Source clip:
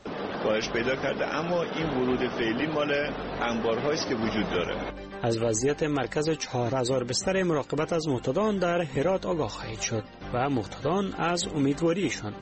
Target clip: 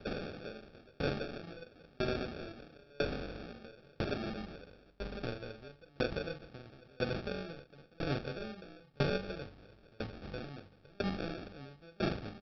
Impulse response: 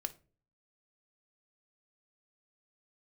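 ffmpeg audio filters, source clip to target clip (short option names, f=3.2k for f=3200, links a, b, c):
-filter_complex "[1:a]atrim=start_sample=2205,asetrate=61740,aresample=44100[a];[0:a][a]afir=irnorm=-1:irlink=0,acrossover=split=180|3000[b][c][d];[c]acompressor=threshold=-38dB:ratio=2.5[e];[b][e][d]amix=inputs=3:normalize=0,asplit=2[f][g];[g]adelay=42,volume=-8dB[h];[f][h]amix=inputs=2:normalize=0,aresample=11025,acrusher=samples=11:mix=1:aa=0.000001,aresample=44100,aeval=exprs='val(0)*pow(10,-33*if(lt(mod(1*n/s,1),2*abs(1)/1000),1-mod(1*n/s,1)/(2*abs(1)/1000),(mod(1*n/s,1)-2*abs(1)/1000)/(1-2*abs(1)/1000))/20)':c=same,volume=5dB"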